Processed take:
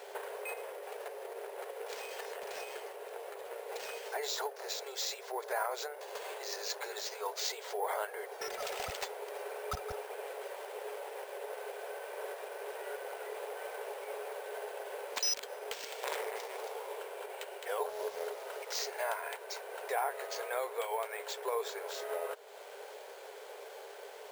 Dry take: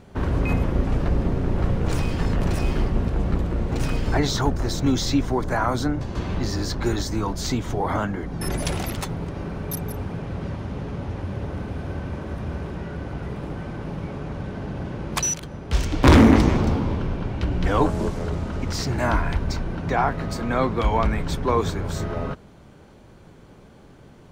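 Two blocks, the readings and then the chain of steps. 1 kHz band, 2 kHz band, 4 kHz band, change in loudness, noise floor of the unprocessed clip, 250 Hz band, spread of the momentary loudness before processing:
-11.5 dB, -10.5 dB, -7.5 dB, -15.0 dB, -48 dBFS, under -35 dB, 10 LU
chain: bell 1200 Hz -7 dB 0.47 oct; compressor 3:1, threshold -40 dBFS, peak gain reduction 22 dB; limiter -29.5 dBFS, peak gain reduction 7 dB; brick-wall FIR high-pass 390 Hz; careless resampling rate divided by 4×, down none, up hold; gain +7 dB

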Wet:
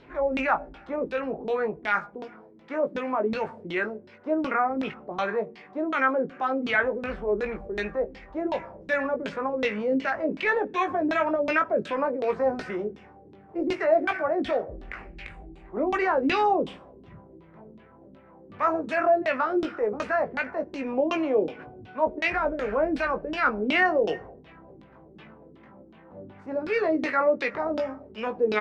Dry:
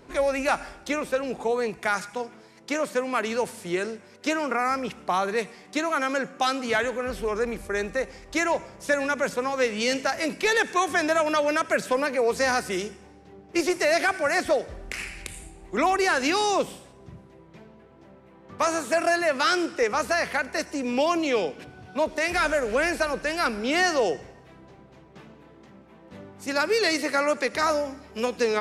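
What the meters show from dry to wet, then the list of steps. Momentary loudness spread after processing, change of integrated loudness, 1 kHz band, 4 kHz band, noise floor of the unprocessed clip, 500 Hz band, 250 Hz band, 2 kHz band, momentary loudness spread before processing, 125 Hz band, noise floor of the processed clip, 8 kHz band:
11 LU, -1.5 dB, -1.0 dB, -9.0 dB, -52 dBFS, -0.5 dB, 0.0 dB, -2.5 dB, 9 LU, -1.5 dB, -52 dBFS, under -20 dB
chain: transient shaper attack -6 dB, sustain 0 dB; LFO low-pass saw down 2.7 Hz 250–3700 Hz; doubler 19 ms -7 dB; gain -2.5 dB

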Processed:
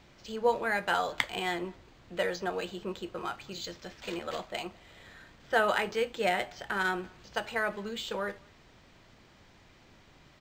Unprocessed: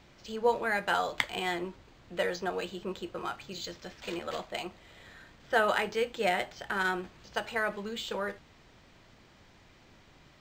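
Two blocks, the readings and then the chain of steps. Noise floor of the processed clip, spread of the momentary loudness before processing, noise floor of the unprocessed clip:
-59 dBFS, 13 LU, -59 dBFS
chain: speakerphone echo 0.21 s, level -28 dB

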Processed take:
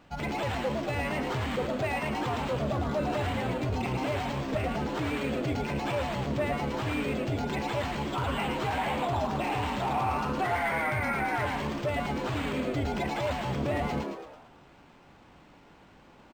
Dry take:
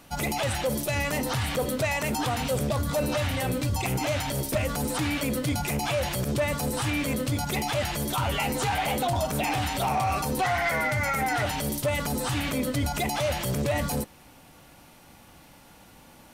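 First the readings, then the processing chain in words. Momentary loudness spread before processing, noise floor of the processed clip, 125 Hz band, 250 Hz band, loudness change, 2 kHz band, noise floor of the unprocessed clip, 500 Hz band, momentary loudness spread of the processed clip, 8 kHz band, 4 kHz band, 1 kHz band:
2 LU, -56 dBFS, -4.0 dB, -2.0 dB, -3.5 dB, -3.5 dB, -53 dBFS, -2.5 dB, 3 LU, -15.5 dB, -7.0 dB, -1.5 dB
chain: on a send: frequency-shifting echo 0.11 s, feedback 47%, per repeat +130 Hz, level -4.5 dB; on the sum: vibrato 5.5 Hz 21 cents; tone controls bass 0 dB, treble -7 dB; decimation joined by straight lines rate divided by 4×; gain -4 dB

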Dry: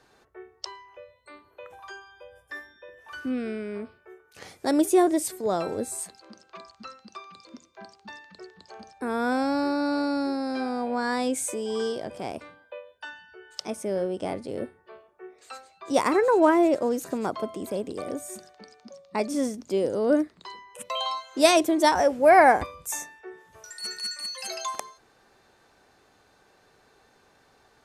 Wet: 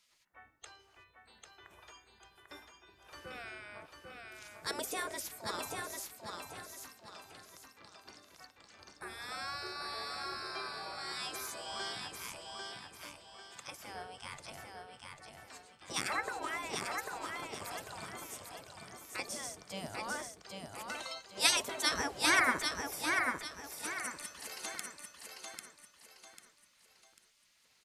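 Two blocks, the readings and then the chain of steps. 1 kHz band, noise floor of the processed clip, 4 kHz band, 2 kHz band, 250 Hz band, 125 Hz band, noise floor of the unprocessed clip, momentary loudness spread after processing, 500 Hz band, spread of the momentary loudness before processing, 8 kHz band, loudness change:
-13.5 dB, -68 dBFS, -3.0 dB, -4.0 dB, -21.5 dB, -9.0 dB, -62 dBFS, 23 LU, -21.0 dB, 24 LU, -4.5 dB, -12.0 dB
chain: spectral gate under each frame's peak -15 dB weak; on a send: feedback echo 0.795 s, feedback 36%, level -4 dB; on the sum: gain -2 dB

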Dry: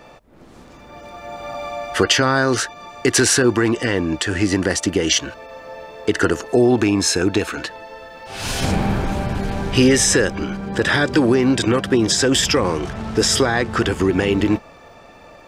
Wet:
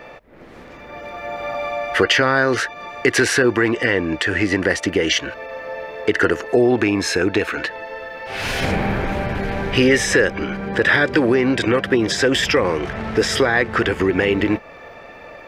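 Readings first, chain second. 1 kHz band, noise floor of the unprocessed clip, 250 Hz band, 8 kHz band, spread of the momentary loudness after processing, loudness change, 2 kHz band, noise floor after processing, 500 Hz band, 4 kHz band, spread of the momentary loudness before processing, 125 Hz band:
+0.5 dB, -44 dBFS, -2.0 dB, -8.0 dB, 14 LU, -0.5 dB, +4.0 dB, -40 dBFS, +1.0 dB, -2.0 dB, 15 LU, -3.0 dB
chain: graphic EQ 500/2000/8000 Hz +6/+10/-7 dB; in parallel at -1 dB: compressor, threshold -23 dBFS, peak gain reduction 15.5 dB; on the sum: gain -5.5 dB

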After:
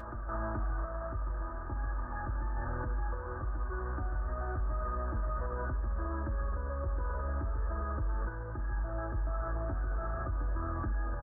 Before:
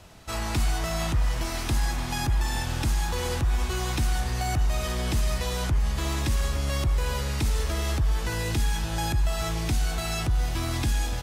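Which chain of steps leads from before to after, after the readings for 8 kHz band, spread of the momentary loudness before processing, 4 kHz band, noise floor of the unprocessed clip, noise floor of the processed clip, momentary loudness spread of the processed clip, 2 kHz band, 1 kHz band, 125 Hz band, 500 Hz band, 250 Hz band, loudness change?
under -40 dB, 2 LU, under -40 dB, -31 dBFS, -39 dBFS, 3 LU, -10.5 dB, -6.0 dB, -9.5 dB, -7.0 dB, -10.5 dB, -9.5 dB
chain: zero-crossing step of -32.5 dBFS; random-step tremolo; rippled Chebyshev low-pass 1700 Hz, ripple 9 dB; bell 310 Hz -9 dB 1.4 oct; reverse echo 0.428 s -8.5 dB; flange 0.35 Hz, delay 8 ms, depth 3.4 ms, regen +56%; comb 3.3 ms, depth 60%; limiter -33 dBFS, peak gain reduction 6 dB; gain +6 dB

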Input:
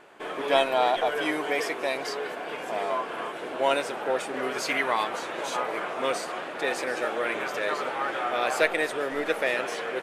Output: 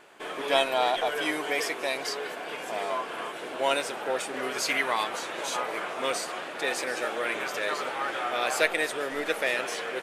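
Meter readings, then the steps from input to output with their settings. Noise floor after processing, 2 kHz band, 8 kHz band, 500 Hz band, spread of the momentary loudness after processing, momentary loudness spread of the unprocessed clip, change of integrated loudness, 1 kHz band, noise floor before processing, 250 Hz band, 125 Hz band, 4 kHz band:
-38 dBFS, 0.0 dB, +4.0 dB, -2.5 dB, 8 LU, 8 LU, -1.0 dB, -2.0 dB, -36 dBFS, -3.0 dB, -3.0 dB, +2.0 dB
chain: high shelf 2600 Hz +8 dB; gain -3 dB

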